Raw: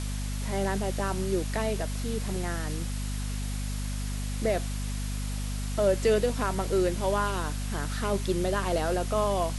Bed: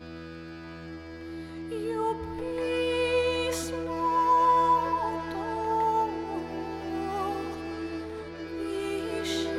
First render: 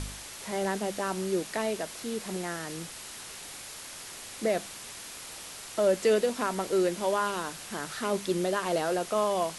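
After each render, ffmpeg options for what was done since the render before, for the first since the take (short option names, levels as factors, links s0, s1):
-af "bandreject=f=50:t=h:w=4,bandreject=f=100:t=h:w=4,bandreject=f=150:t=h:w=4,bandreject=f=200:t=h:w=4,bandreject=f=250:t=h:w=4"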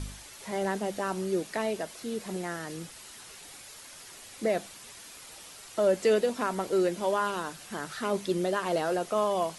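-af "afftdn=nr=7:nf=-44"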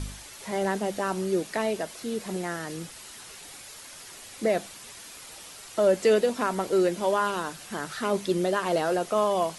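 -af "volume=1.41"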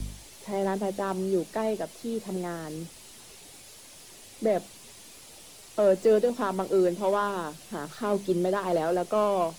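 -filter_complex "[0:a]acrossover=split=130|530|1600[s0][s1][s2][s3];[s2]adynamicsmooth=sensitivity=2.5:basefreq=970[s4];[s3]aeval=exprs='(tanh(141*val(0)+0.65)-tanh(0.65))/141':c=same[s5];[s0][s1][s4][s5]amix=inputs=4:normalize=0"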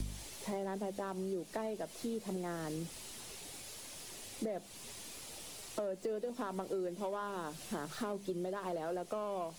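-af "alimiter=limit=0.1:level=0:latency=1:release=403,acompressor=threshold=0.0158:ratio=5"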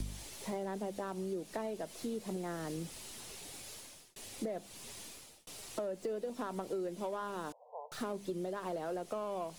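-filter_complex "[0:a]asettb=1/sr,asplit=3[s0][s1][s2];[s0]atrim=end=7.524[s3];[s1]atrim=start=7.52:end=7.92,asetpts=PTS-STARTPTS,afade=t=in:d=0.004:c=qsin,afade=t=out:st=0.396:d=0.004:c=qsin,asuperpass=centerf=680:order=20:qfactor=1.2[s4];[s2]atrim=start=7.916[s5];[s3][s4]acrossfade=d=0.004:c1=hsin:c2=qsin[s6];[s6][s5]acrossfade=d=0.004:c1=qsin:c2=hsin,asplit=3[s7][s8][s9];[s7]atrim=end=4.16,asetpts=PTS-STARTPTS,afade=t=out:st=3.74:d=0.42[s10];[s8]atrim=start=4.16:end=5.47,asetpts=PTS-STARTPTS,afade=t=in:d=0.004:c=hsin,afade=t=out:st=0.87:d=0.44[s11];[s9]atrim=start=5.47,asetpts=PTS-STARTPTS,afade=t=in:d=0.004:c=hsin[s12];[s10][s11][s12]concat=n=3:v=0:a=1"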